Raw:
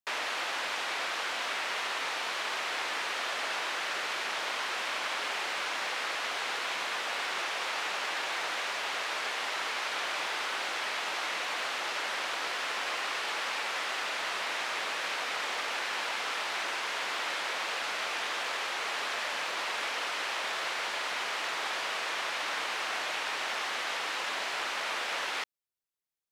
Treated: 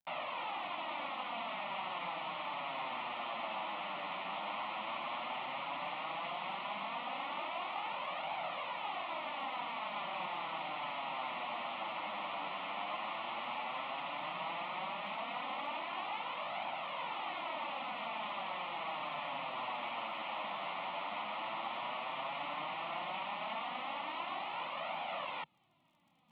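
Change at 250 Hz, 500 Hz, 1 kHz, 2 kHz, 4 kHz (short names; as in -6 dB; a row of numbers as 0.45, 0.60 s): -0.5, -4.0, -2.5, -11.5, -11.0 dB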